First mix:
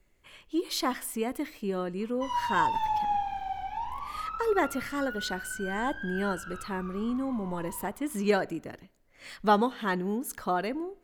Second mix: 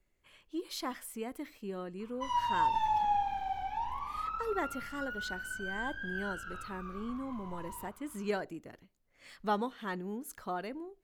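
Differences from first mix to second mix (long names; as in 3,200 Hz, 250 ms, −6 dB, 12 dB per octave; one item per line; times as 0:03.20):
speech −8.0 dB
reverb: off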